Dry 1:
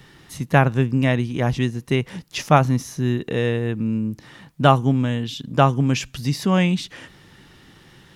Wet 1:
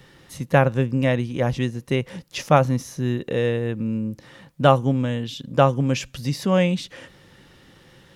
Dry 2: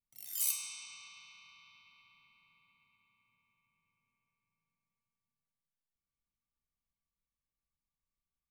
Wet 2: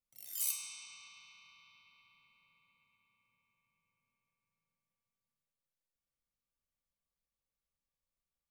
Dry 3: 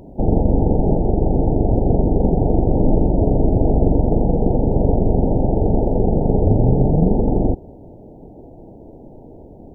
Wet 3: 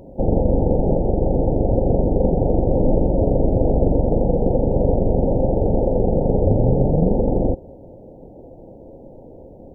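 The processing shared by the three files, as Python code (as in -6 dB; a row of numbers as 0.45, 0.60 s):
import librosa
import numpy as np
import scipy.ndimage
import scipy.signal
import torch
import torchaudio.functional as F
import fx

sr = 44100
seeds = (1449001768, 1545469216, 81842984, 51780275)

y = fx.peak_eq(x, sr, hz=530.0, db=11.0, octaves=0.21)
y = y * librosa.db_to_amplitude(-2.5)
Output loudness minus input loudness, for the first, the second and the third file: -1.5, -2.5, -1.5 LU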